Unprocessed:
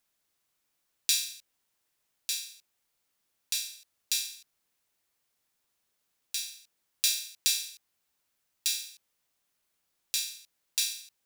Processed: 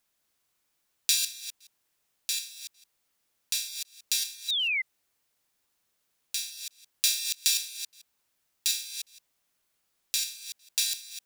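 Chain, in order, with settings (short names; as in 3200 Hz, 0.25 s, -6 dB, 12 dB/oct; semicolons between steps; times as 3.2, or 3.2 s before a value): reverse delay 0.167 s, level -7 dB; painted sound fall, 4.48–4.82, 2000–4000 Hz -29 dBFS; gain +1.5 dB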